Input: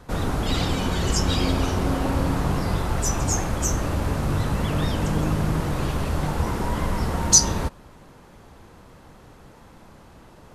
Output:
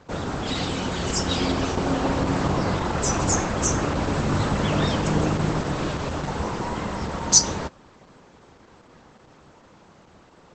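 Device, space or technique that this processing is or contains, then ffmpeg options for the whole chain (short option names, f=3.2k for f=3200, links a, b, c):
video call: -filter_complex "[0:a]asettb=1/sr,asplit=3[a][b][c];[a]atrim=end=2.494[d];[b]atrim=start=2.49:end=4.02,asetpts=PTS-STARTPTS,afade=t=in:d=0.004:c=qsin,afade=t=out:st=1.526:d=0.004:c=qsin,highshelf=f=4.3k:g=-3[e];[c]atrim=start=4.016[f];[d][e]acrossfade=d=0.004:c1=hsin:c2=qsin[g];[g][f]acrossfade=d=0.004:c1=qsin:c2=hsin,highpass=f=160:p=1,dynaudnorm=f=550:g=7:m=5.5dB" -ar 48000 -c:a libopus -b:a 12k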